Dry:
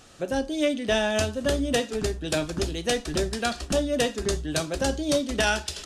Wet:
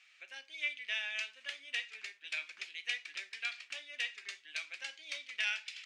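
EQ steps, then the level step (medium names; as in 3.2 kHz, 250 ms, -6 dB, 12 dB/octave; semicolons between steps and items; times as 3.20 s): ladder band-pass 2.4 kHz, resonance 75%; +1.0 dB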